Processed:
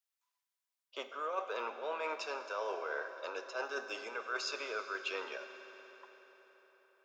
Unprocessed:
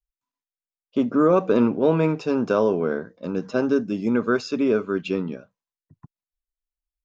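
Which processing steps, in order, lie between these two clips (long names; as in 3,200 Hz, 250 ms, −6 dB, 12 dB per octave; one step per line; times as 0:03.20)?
Bessel high-pass filter 910 Hz, order 6
reversed playback
downward compressor, threshold −41 dBFS, peak gain reduction 17 dB
reversed playback
convolution reverb RT60 4.9 s, pre-delay 4 ms, DRR 7.5 dB
level +4.5 dB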